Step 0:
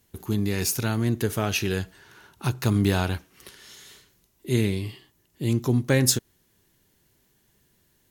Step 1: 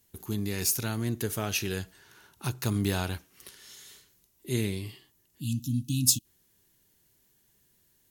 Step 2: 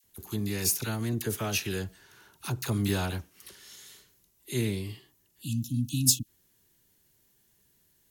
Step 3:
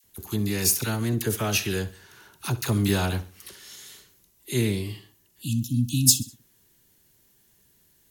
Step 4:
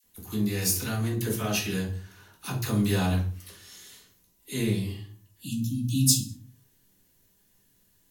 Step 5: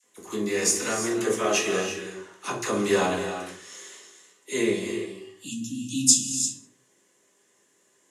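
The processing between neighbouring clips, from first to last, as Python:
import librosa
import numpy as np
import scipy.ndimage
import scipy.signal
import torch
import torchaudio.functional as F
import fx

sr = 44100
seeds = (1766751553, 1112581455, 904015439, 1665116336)

y1 = fx.high_shelf(x, sr, hz=4600.0, db=8.0)
y1 = fx.spec_erase(y1, sr, start_s=5.4, length_s=0.85, low_hz=320.0, high_hz=2500.0)
y1 = y1 * librosa.db_to_amplitude(-6.5)
y2 = fx.dispersion(y1, sr, late='lows', ms=41.0, hz=1100.0)
y3 = fx.echo_feedback(y2, sr, ms=66, feedback_pct=40, wet_db=-17.0)
y3 = y3 * librosa.db_to_amplitude(5.0)
y4 = fx.room_shoebox(y3, sr, seeds[0], volume_m3=210.0, walls='furnished', distance_m=1.9)
y4 = y4 * librosa.db_to_amplitude(-6.5)
y5 = fx.cabinet(y4, sr, low_hz=320.0, low_slope=12, high_hz=9200.0, hz=(380.0, 560.0, 1100.0, 2000.0, 4300.0, 7100.0), db=(9, 8, 8, 6, -6, 7))
y5 = fx.rev_gated(y5, sr, seeds[1], gate_ms=370, shape='rising', drr_db=7.5)
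y5 = y5 * librosa.db_to_amplitude(3.0)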